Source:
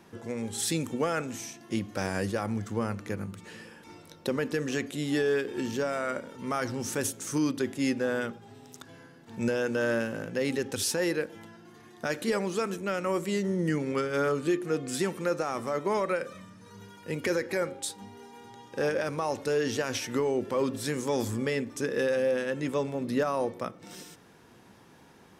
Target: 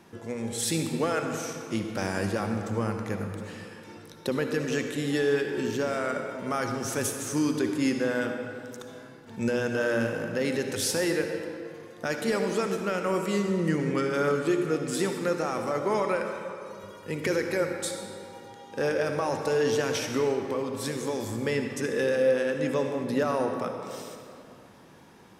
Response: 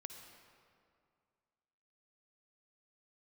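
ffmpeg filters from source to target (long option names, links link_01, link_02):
-filter_complex "[0:a]asettb=1/sr,asplit=3[link_01][link_02][link_03];[link_01]atrim=end=16.234[link_04];[link_02]atrim=start=16.23:end=16.84,asetpts=PTS-STARTPTS,afade=type=in:duration=0.004:curve=qsin,afade=type=out:start_time=0.606:duration=0.004:curve=qsin,highpass=frequency=310:poles=1[link_05];[link_03]atrim=start=16.836[link_06];[link_04][link_05]acrossfade=duration=0.004:curve1=hsin:curve2=qsin[link_07];[link_07][link_06]acrossfade=duration=0.004:curve1=qsin:curve2=hsin,asettb=1/sr,asplit=3[link_08][link_09][link_10];[link_08]atrim=end=20.344[link_11];[link_09]atrim=start=20.34:end=21.44,asetpts=PTS-STARTPTS,afade=type=in:duration=0.004:curve=qsin,afade=type=out:start_time=1.096:duration=0.004:curve=qsin,acompressor=threshold=-29dB:ratio=6[link_12];[link_10]atrim=start=21.436[link_13];[link_11][link_12]acrossfade=duration=0.004:curve1=hsin:curve2=qsin[link_14];[link_14][link_13]acrossfade=duration=0.004:curve1=qsin:curve2=hsin[link_15];[1:a]atrim=start_sample=2205,asetrate=40572,aresample=44100[link_16];[link_15][link_16]afir=irnorm=-1:irlink=0,volume=6dB"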